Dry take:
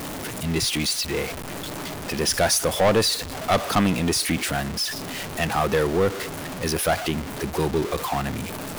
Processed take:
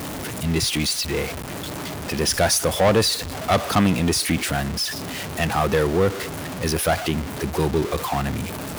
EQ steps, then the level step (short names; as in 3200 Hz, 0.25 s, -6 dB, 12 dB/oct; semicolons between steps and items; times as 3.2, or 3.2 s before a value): HPF 57 Hz; low shelf 94 Hz +8.5 dB; +1.0 dB